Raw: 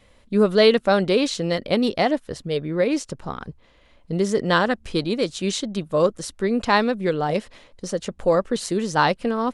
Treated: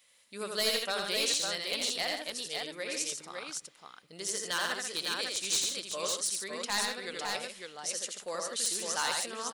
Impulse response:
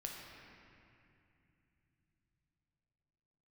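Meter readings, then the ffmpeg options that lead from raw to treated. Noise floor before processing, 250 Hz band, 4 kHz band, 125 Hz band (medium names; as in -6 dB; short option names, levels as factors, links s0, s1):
-55 dBFS, -23.5 dB, -2.0 dB, -26.5 dB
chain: -filter_complex "[0:a]aderivative,aeval=exprs='0.0668*(abs(mod(val(0)/0.0668+3,4)-2)-1)':c=same,aecho=1:1:63|83|142|556:0.133|0.668|0.398|0.631,asplit=2[s0][s1];[1:a]atrim=start_sample=2205[s2];[s1][s2]afir=irnorm=-1:irlink=0,volume=0.1[s3];[s0][s3]amix=inputs=2:normalize=0,volume=1.19"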